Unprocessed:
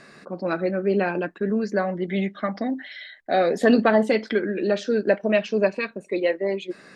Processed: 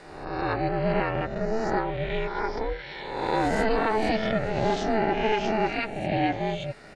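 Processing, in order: spectral swells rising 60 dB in 1.05 s; limiter -11 dBFS, peak gain reduction 6.5 dB; on a send: echo 0.879 s -19 dB; on the sum: ring modulator 220 Hz; gain -1.5 dB

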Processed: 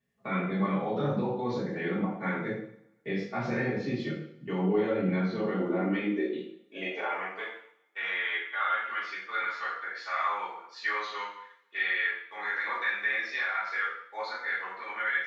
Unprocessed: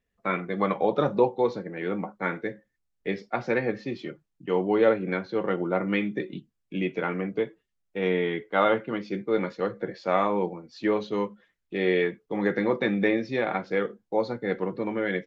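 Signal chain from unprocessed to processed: high-pass sweep 140 Hz -> 1400 Hz, 5.23–7.66; reverse; upward compressor, threshold -50 dBFS; reverse; limiter -21.5 dBFS, peak gain reduction 13 dB; two-slope reverb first 0.59 s, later 1.6 s, from -26 dB, DRR -10 dB; gain -8.5 dB

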